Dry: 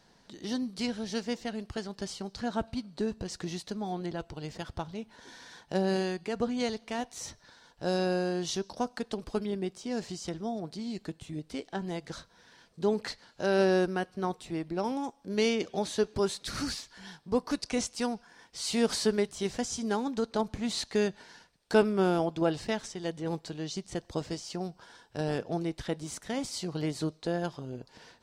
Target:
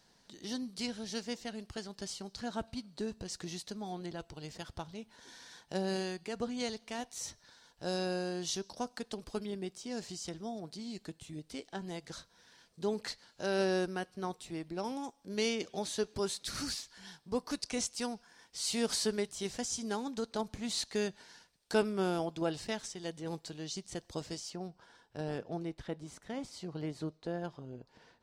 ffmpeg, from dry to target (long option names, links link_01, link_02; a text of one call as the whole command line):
ffmpeg -i in.wav -af "asetnsamples=nb_out_samples=441:pad=0,asendcmd='24.5 highshelf g -3.5;25.74 highshelf g -8',highshelf=frequency=3500:gain=8,volume=-6.5dB" out.wav